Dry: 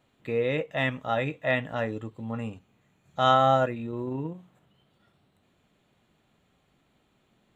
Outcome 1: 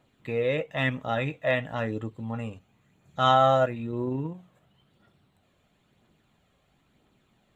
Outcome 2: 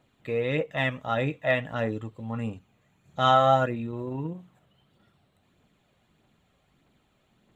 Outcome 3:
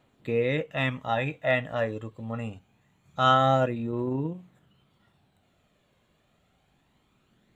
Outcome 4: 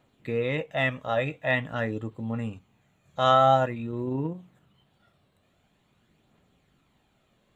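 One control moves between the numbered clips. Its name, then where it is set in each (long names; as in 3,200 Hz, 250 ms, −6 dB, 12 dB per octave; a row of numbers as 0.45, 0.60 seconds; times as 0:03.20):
phase shifter, speed: 0.99, 1.6, 0.25, 0.47 Hertz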